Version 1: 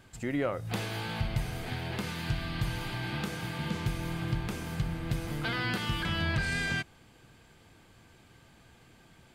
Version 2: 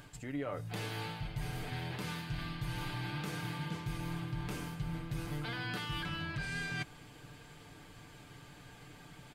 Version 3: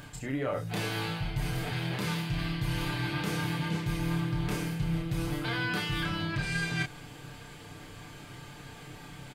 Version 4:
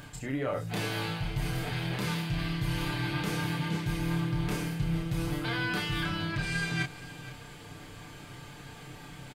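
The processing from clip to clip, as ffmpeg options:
ffmpeg -i in.wav -af "areverse,acompressor=threshold=-41dB:ratio=6,areverse,aecho=1:1:6.8:0.57,acompressor=mode=upward:threshold=-59dB:ratio=2.5,volume=3dB" out.wav
ffmpeg -i in.wav -filter_complex "[0:a]asplit=2[link_01][link_02];[link_02]adelay=30,volume=-4dB[link_03];[link_01][link_03]amix=inputs=2:normalize=0,volume=6dB" out.wav
ffmpeg -i in.wav -af "aecho=1:1:471:0.15" out.wav

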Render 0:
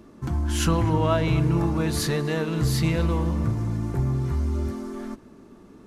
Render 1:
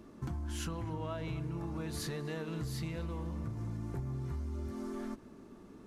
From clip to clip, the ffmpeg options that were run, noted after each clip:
ffmpeg -i in.wav -af "acompressor=threshold=-30dB:ratio=10,volume=-5dB" out.wav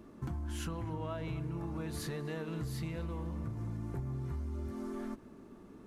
ffmpeg -i in.wav -af "equalizer=frequency=5400:width_type=o:width=1.4:gain=-4" out.wav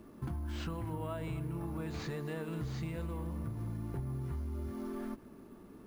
ffmpeg -i in.wav -filter_complex "[0:a]acrusher=samples=4:mix=1:aa=0.000001,acrossover=split=5500[link_01][link_02];[link_02]acompressor=threshold=-60dB:ratio=4:attack=1:release=60[link_03];[link_01][link_03]amix=inputs=2:normalize=0" out.wav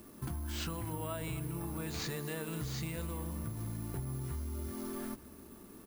ffmpeg -i in.wav -filter_complex "[0:a]crystalizer=i=4:c=0,asplit=2[link_01][link_02];[link_02]adelay=874.6,volume=-23dB,highshelf=frequency=4000:gain=-19.7[link_03];[link_01][link_03]amix=inputs=2:normalize=0,volume=-1dB" out.wav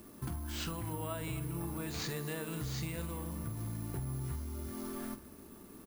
ffmpeg -i in.wav -filter_complex "[0:a]asplit=2[link_01][link_02];[link_02]adelay=47,volume=-13dB[link_03];[link_01][link_03]amix=inputs=2:normalize=0" out.wav

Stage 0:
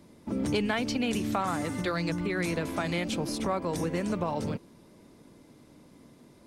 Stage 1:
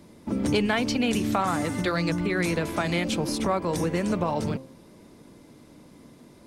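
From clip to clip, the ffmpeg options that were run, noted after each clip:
ffmpeg -i in.wav -af "bandreject=frequency=132.1:width_type=h:width=4,bandreject=frequency=264.2:width_type=h:width=4,bandreject=frequency=396.3:width_type=h:width=4,bandreject=frequency=528.4:width_type=h:width=4,bandreject=frequency=660.5:width_type=h:width=4,bandreject=frequency=792.6:width_type=h:width=4,bandreject=frequency=924.7:width_type=h:width=4,bandreject=frequency=1056.8:width_type=h:width=4,bandreject=frequency=1188.9:width_type=h:width=4,volume=4.5dB" out.wav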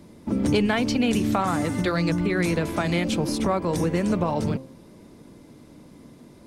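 ffmpeg -i in.wav -af "lowshelf=frequency=440:gain=4" out.wav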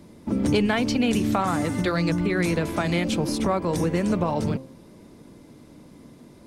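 ffmpeg -i in.wav -af anull out.wav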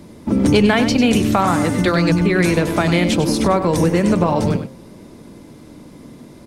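ffmpeg -i in.wav -af "aecho=1:1:97:0.316,volume=7.5dB" out.wav

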